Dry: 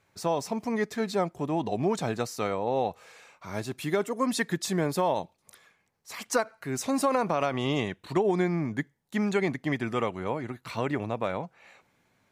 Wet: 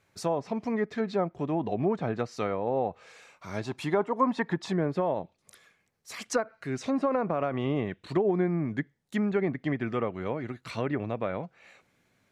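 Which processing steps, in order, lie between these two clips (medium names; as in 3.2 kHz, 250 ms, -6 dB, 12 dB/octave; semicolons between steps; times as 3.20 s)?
low-pass that closes with the level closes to 1.5 kHz, closed at -23.5 dBFS; peaking EQ 910 Hz -3 dB 0.56 oct, from 3.63 s +9.5 dB, from 4.72 s -6 dB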